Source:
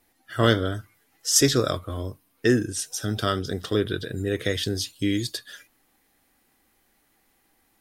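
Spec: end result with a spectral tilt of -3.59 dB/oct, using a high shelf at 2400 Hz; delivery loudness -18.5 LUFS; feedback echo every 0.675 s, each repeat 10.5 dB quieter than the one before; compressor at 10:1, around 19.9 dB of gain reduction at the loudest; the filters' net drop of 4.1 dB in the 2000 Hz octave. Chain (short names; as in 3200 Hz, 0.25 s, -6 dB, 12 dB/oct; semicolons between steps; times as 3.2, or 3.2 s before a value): bell 2000 Hz -8.5 dB; high shelf 2400 Hz +7 dB; compressor 10:1, threshold -29 dBFS; feedback echo 0.675 s, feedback 30%, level -10.5 dB; gain +15.5 dB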